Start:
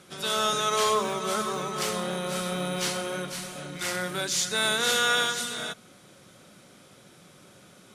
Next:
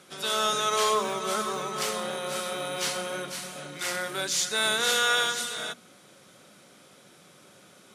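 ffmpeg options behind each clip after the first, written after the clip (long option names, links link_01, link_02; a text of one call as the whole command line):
ffmpeg -i in.wav -af "highpass=frequency=200:poles=1,bandreject=frequency=60:width_type=h:width=6,bandreject=frequency=120:width_type=h:width=6,bandreject=frequency=180:width_type=h:width=6,bandreject=frequency=240:width_type=h:width=6,bandreject=frequency=300:width_type=h:width=6,bandreject=frequency=360:width_type=h:width=6" out.wav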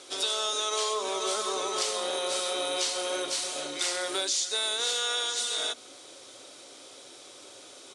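ffmpeg -i in.wav -af "firequalizer=gain_entry='entry(110,0);entry(180,-18);entry(270,6);entry(390,8);entry(940,7);entry(1500,2);entry(3800,13);entry(9500,11);entry(14000,-21)':delay=0.05:min_phase=1,acompressor=threshold=-24dB:ratio=6,volume=-2.5dB" out.wav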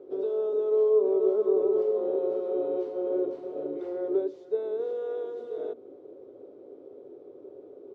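ffmpeg -i in.wav -af "lowpass=frequency=420:width_type=q:width=4.9" out.wav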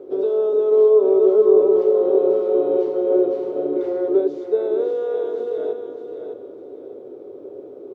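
ffmpeg -i in.wav -af "aecho=1:1:607|1214|1821:0.398|0.111|0.0312,volume=9dB" out.wav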